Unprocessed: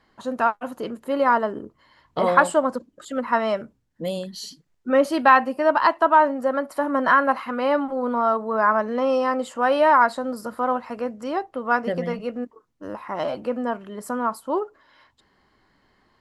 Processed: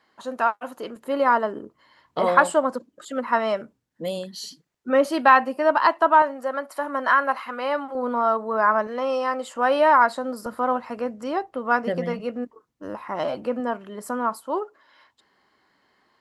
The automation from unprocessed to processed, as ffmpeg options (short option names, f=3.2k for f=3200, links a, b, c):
-af "asetnsamples=n=441:p=0,asendcmd='0.96 highpass f 210;6.22 highpass f 760;7.95 highpass f 230;8.87 highpass f 570;9.56 highpass f 200;10.46 highpass f 56;13.6 highpass f 160;14.42 highpass f 390',highpass=f=450:p=1"